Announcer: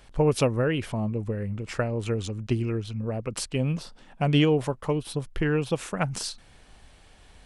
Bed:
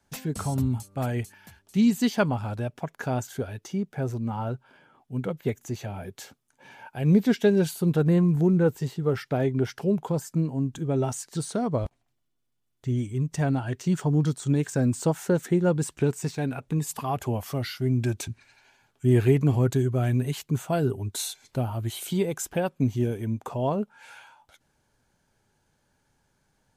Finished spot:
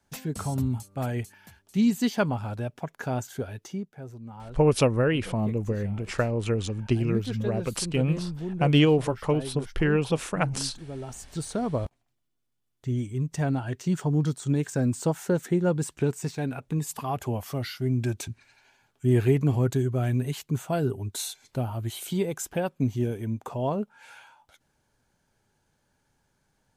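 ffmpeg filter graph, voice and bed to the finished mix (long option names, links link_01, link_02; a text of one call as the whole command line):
ffmpeg -i stem1.wav -i stem2.wav -filter_complex "[0:a]adelay=4400,volume=1.5dB[link_01];[1:a]volume=9dB,afade=type=out:start_time=3.65:duration=0.3:silence=0.298538,afade=type=in:start_time=11.04:duration=0.43:silence=0.298538[link_02];[link_01][link_02]amix=inputs=2:normalize=0" out.wav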